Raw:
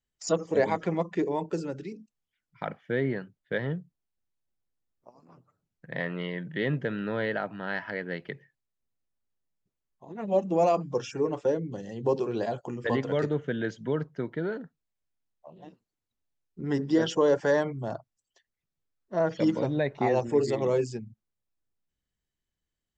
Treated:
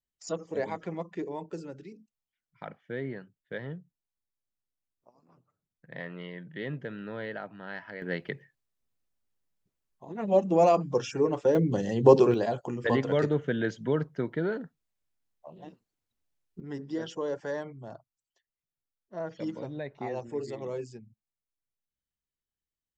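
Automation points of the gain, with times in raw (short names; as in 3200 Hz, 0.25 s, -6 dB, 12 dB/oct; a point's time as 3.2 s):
-7.5 dB
from 8.02 s +2 dB
from 11.55 s +9 dB
from 12.34 s +1.5 dB
from 16.6 s -10 dB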